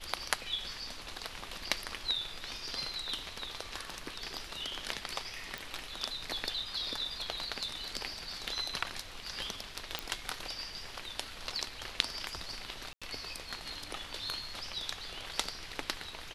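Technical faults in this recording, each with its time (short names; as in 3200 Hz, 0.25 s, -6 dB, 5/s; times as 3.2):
5.58 pop
9.99 pop -16 dBFS
12.93–13.02 gap 86 ms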